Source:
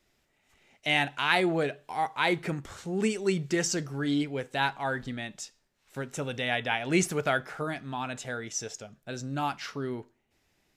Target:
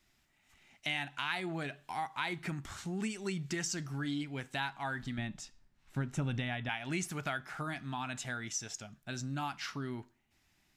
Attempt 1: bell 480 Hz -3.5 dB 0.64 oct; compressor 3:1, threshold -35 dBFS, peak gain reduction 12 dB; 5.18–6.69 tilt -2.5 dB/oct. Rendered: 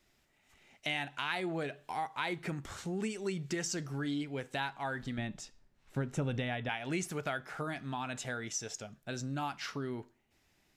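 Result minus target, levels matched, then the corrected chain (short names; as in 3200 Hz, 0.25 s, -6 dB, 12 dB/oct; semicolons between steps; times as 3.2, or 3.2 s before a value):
500 Hz band +4.5 dB
bell 480 Hz -15 dB 0.64 oct; compressor 3:1, threshold -35 dBFS, peak gain reduction 11.5 dB; 5.18–6.69 tilt -2.5 dB/oct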